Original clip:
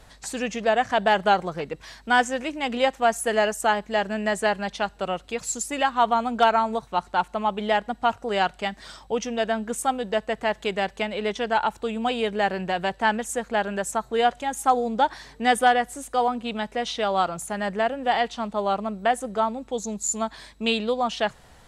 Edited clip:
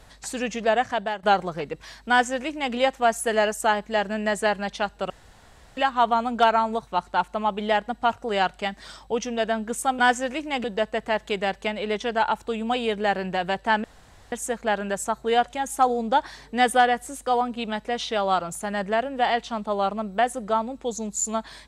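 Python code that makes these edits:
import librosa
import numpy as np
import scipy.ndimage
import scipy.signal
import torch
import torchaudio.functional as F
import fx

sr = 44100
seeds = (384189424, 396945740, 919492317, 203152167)

y = fx.edit(x, sr, fx.fade_out_to(start_s=0.77, length_s=0.46, floor_db=-17.5),
    fx.duplicate(start_s=2.09, length_s=0.65, to_s=9.99),
    fx.room_tone_fill(start_s=5.1, length_s=0.67),
    fx.insert_room_tone(at_s=13.19, length_s=0.48), tone=tone)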